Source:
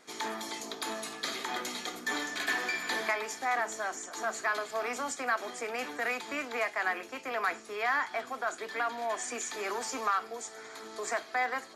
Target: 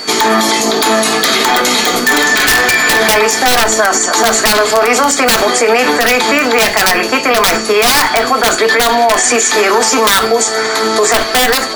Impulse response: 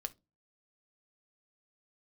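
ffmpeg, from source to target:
-filter_complex "[0:a]aeval=exprs='(mod(15.8*val(0)+1,2)-1)/15.8':channel_layout=same,acontrast=73,aeval=exprs='val(0)+0.00562*sin(2*PI*4500*n/s)':channel_layout=same[link_01];[1:a]atrim=start_sample=2205[link_02];[link_01][link_02]afir=irnorm=-1:irlink=0,alimiter=level_in=27dB:limit=-1dB:release=50:level=0:latency=1,volume=-1dB"

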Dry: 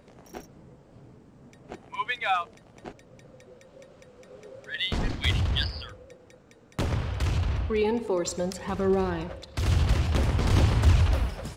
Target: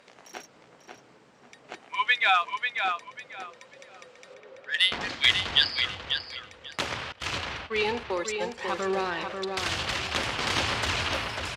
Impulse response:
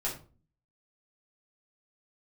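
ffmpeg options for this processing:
-filter_complex "[0:a]asettb=1/sr,asplit=3[link_01][link_02][link_03];[link_01]atrim=end=4.344[link_04];[link_02]atrim=start=4.34:end=5.01,asetpts=PTS-STARTPTS,afade=type=in:duration=0.004:curve=qsin,afade=type=out:start_time=0.666:duration=0.004:curve=qsin,adynamicsmooth=sensitivity=3:basefreq=2300[link_05];[link_03]atrim=start=5.006[link_06];[link_04][link_05]acrossfade=duration=0.004:curve1=hsin:curve2=qsin[link_07];[link_07][link_06]acrossfade=duration=0.004:curve1=qsin:curve2=hsin,asettb=1/sr,asplit=3[link_08][link_09][link_10];[link_08]atrim=end=7.124[link_11];[link_09]atrim=start=7.12:end=8.58,asetpts=PTS-STARTPTS,afade=type=in:duration=0.004:curve=qsin,afade=type=out:start_time=1.456:duration=0.004:curve=qsin,agate=range=-24dB:threshold=-28dB:ratio=16:detection=peak[link_12];[link_10]atrim=start=8.576[link_13];[link_11][link_12]acrossfade=duration=0.004:curve1=hsin:curve2=qsin[link_14];[link_14][link_13]acrossfade=duration=0.004:curve1=qsin:curve2=hsin,bandpass=frequency=3000:width_type=q:width=0.59:csg=0,asplit=2[link_15][link_16];[link_16]adelay=542,lowpass=frequency=3800:poles=1,volume=-5dB,asplit=2[link_17][link_18];[link_18]adelay=542,lowpass=frequency=3800:poles=1,volume=0.24,asplit=2[link_19][link_20];[link_20]adelay=542,lowpass=frequency=3800:poles=1,volume=0.24[link_21];[link_17][link_19][link_21]amix=inputs=3:normalize=0[link_22];[link_15][link_22]amix=inputs=2:normalize=0,volume=8.5dB"

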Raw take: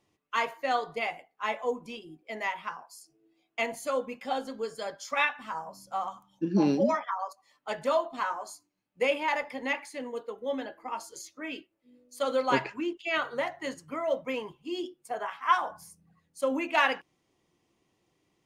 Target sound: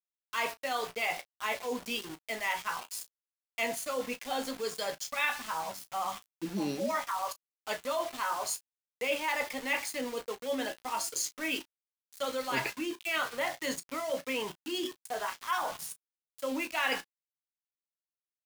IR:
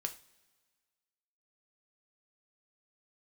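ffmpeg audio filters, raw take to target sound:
-af "areverse,acompressor=threshold=-37dB:ratio=4,areverse,aeval=exprs='val(0)*gte(abs(val(0)),0.00422)':channel_layout=same,highshelf=frequency=2100:gain=9,aecho=1:1:16|34:0.237|0.158,volume=3.5dB"

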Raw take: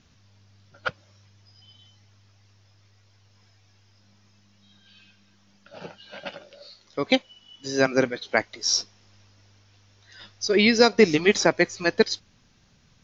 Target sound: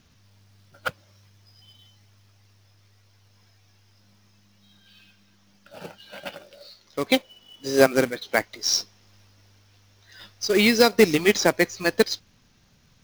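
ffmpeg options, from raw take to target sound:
ffmpeg -i in.wav -filter_complex "[0:a]asplit=3[link_01][link_02][link_03];[link_01]afade=type=out:start_time=7.16:duration=0.02[link_04];[link_02]equalizer=frequency=490:width_type=o:width=1.5:gain=6.5,afade=type=in:start_time=7.16:duration=0.02,afade=type=out:start_time=7.86:duration=0.02[link_05];[link_03]afade=type=in:start_time=7.86:duration=0.02[link_06];[link_04][link_05][link_06]amix=inputs=3:normalize=0,acrusher=bits=3:mode=log:mix=0:aa=0.000001" out.wav

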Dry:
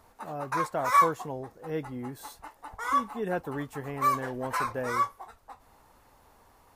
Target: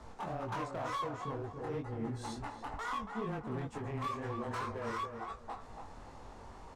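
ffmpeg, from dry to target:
ffmpeg -i in.wav -filter_complex "[0:a]lowpass=frequency=7900:width=0.5412,lowpass=frequency=7900:width=1.3066,lowshelf=frequency=410:gain=7,acompressor=threshold=-42dB:ratio=4,afreqshift=-15,asoftclip=type=hard:threshold=-39dB,flanger=delay=18:depth=6.4:speed=2.1,asplit=2[link_01][link_02];[link_02]adelay=282,lowpass=frequency=2000:poles=1,volume=-6dB,asplit=2[link_03][link_04];[link_04]adelay=282,lowpass=frequency=2000:poles=1,volume=0.27,asplit=2[link_05][link_06];[link_06]adelay=282,lowpass=frequency=2000:poles=1,volume=0.27[link_07];[link_03][link_05][link_07]amix=inputs=3:normalize=0[link_08];[link_01][link_08]amix=inputs=2:normalize=0,volume=7.5dB" out.wav

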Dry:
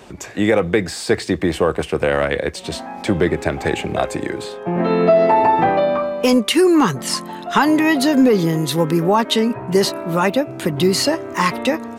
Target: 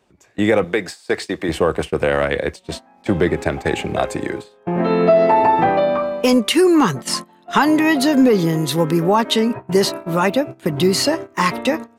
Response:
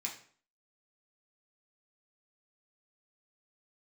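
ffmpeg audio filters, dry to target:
-filter_complex "[0:a]agate=range=-20dB:threshold=-25dB:ratio=16:detection=peak,asettb=1/sr,asplit=3[link_01][link_02][link_03];[link_01]atrim=end=0.644[link_04];[link_02]atrim=start=0.64:end=1.49,asetpts=PTS-STARTPTS,afade=type=in:duration=0.004:curve=qsin,afade=type=out:start_time=0.846:duration=0.004:curve=qsin,highpass=frequency=430:poles=1[link_05];[link_03]atrim=start=1.486[link_06];[link_04][link_05]acrossfade=duration=0.004:curve1=hsin:curve2=qsin[link_07];[link_07][link_06]acrossfade=duration=0.004:curve1=qsin:curve2=hsin"

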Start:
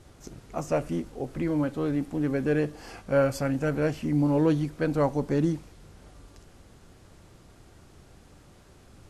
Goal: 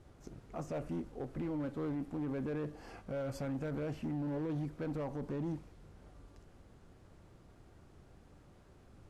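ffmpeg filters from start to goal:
ffmpeg -i in.wav -af "highshelf=frequency=2600:gain=-9.5,alimiter=limit=-23.5dB:level=0:latency=1:release=40,asoftclip=type=hard:threshold=-27dB,volume=-6dB" out.wav

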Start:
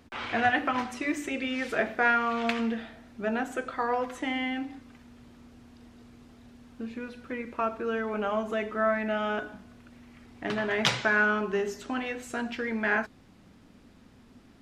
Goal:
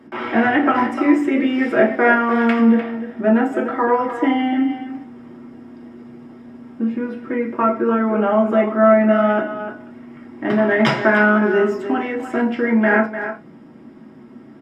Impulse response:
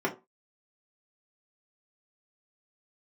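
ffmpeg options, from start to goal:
-filter_complex "[0:a]asplit=2[link_01][link_02];[link_02]adelay=300,highpass=300,lowpass=3400,asoftclip=type=hard:threshold=-17dB,volume=-9dB[link_03];[link_01][link_03]amix=inputs=2:normalize=0[link_04];[1:a]atrim=start_sample=2205,atrim=end_sample=3528,asetrate=41013,aresample=44100[link_05];[link_04][link_05]afir=irnorm=-1:irlink=0"

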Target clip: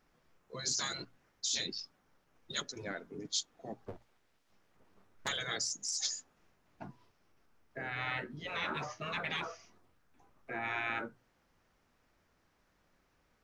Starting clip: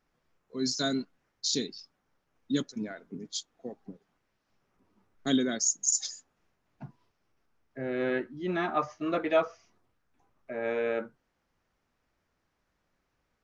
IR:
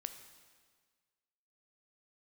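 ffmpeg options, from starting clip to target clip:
-filter_complex "[0:a]asplit=3[link_01][link_02][link_03];[link_01]afade=type=out:start_time=3.85:duration=0.02[link_04];[link_02]aeval=exprs='abs(val(0))':channel_layout=same,afade=type=in:start_time=3.85:duration=0.02,afade=type=out:start_time=5.27:duration=0.02[link_05];[link_03]afade=type=in:start_time=5.27:duration=0.02[link_06];[link_04][link_05][link_06]amix=inputs=3:normalize=0,afftfilt=real='re*lt(hypot(re,im),0.0562)':imag='im*lt(hypot(re,im),0.0562)':win_size=1024:overlap=0.75,bandreject=frequency=60:width_type=h:width=6,bandreject=frequency=120:width_type=h:width=6,volume=4.5dB"

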